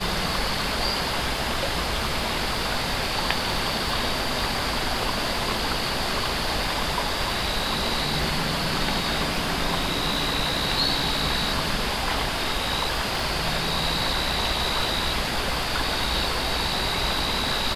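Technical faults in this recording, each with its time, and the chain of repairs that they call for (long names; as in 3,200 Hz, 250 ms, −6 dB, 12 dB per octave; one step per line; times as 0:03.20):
surface crackle 43 per second −31 dBFS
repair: click removal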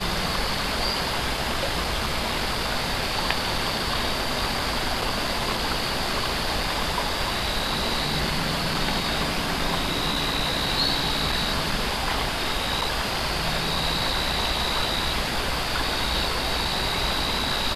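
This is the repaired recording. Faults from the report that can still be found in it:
none of them is left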